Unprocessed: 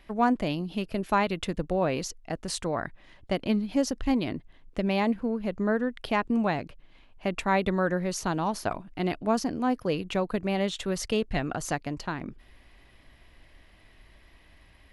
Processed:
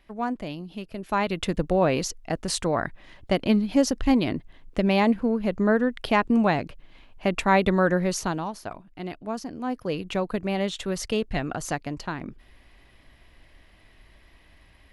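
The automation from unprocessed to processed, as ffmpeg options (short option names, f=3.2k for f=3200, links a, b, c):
-af "volume=12dB,afade=t=in:st=1:d=0.54:silence=0.316228,afade=t=out:st=8.07:d=0.46:silence=0.281838,afade=t=in:st=9.49:d=0.61:silence=0.446684"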